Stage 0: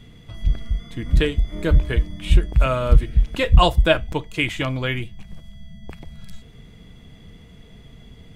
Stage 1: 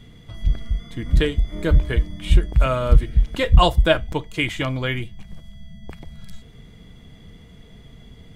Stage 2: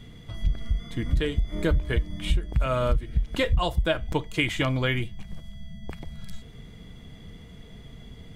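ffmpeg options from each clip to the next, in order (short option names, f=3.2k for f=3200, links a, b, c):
-af "bandreject=f=2.6k:w=14"
-af "acompressor=threshold=-19dB:ratio=10"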